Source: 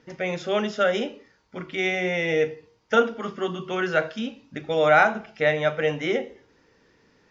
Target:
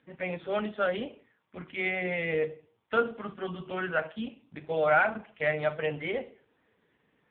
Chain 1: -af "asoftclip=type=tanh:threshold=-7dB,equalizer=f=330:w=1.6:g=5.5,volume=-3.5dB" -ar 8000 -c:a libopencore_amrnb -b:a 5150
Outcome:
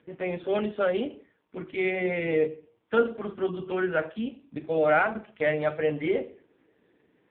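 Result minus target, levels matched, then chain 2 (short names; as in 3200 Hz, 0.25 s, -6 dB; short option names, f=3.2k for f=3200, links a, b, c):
250 Hz band +3.5 dB
-af "asoftclip=type=tanh:threshold=-7dB,equalizer=f=330:w=1.6:g=-5,volume=-3.5dB" -ar 8000 -c:a libopencore_amrnb -b:a 5150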